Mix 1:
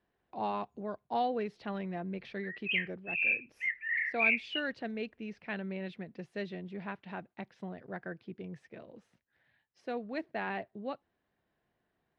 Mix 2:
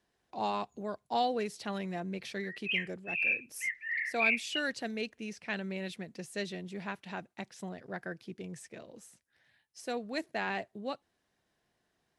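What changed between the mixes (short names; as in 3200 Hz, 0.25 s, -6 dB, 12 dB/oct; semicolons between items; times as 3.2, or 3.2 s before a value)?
background -5.0 dB; master: remove air absorption 330 m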